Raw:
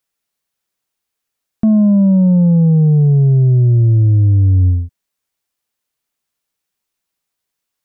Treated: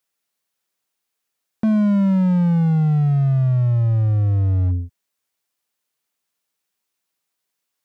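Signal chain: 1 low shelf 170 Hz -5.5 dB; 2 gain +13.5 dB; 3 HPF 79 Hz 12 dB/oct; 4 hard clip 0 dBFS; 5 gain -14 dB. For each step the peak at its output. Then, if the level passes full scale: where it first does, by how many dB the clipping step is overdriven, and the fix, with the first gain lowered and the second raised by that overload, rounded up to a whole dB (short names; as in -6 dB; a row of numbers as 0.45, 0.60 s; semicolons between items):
-9.0, +4.5, +6.0, 0.0, -14.0 dBFS; step 2, 6.0 dB; step 2 +7.5 dB, step 5 -8 dB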